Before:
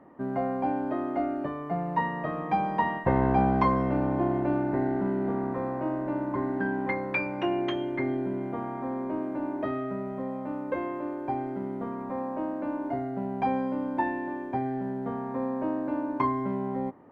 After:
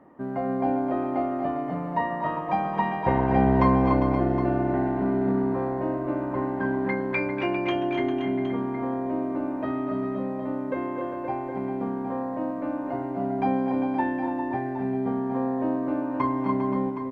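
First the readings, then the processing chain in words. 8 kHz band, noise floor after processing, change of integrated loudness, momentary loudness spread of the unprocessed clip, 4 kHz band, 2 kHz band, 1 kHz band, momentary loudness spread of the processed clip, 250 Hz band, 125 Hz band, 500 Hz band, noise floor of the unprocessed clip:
n/a, -32 dBFS, +3.0 dB, 7 LU, +2.0 dB, +1.5 dB, +2.0 dB, 8 LU, +3.5 dB, +3.5 dB, +3.5 dB, -36 dBFS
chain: tapped delay 0.24/0.26/0.29/0.4/0.523/0.765 s -11/-8/-8.5/-9/-10/-11.5 dB

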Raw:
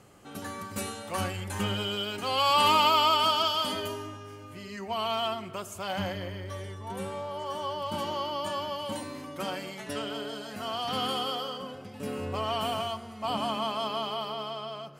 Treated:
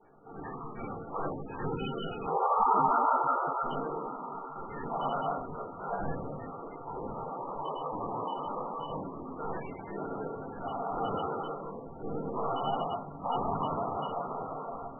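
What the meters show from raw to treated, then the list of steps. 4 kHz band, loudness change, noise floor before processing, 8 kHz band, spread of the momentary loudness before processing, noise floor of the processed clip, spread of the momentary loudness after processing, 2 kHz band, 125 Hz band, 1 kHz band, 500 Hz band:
-21.0 dB, -4.0 dB, -45 dBFS, under -35 dB, 16 LU, -44 dBFS, 14 LU, -11.0 dB, -3.0 dB, -1.0 dB, -2.5 dB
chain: Chebyshev band-pass 190–5600 Hz, order 3; notches 50/100/150/200/250/300/350/400 Hz; treble ducked by the level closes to 1700 Hz, closed at -21.5 dBFS; high shelf 2000 Hz -10 dB; notch 590 Hz, Q 19; whisperiser; resonator 230 Hz, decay 0.3 s, harmonics all, mix 70%; diffused feedback echo 1.44 s, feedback 47%, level -15.5 dB; shoebox room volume 200 m³, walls furnished, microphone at 4.4 m; MP3 8 kbps 22050 Hz

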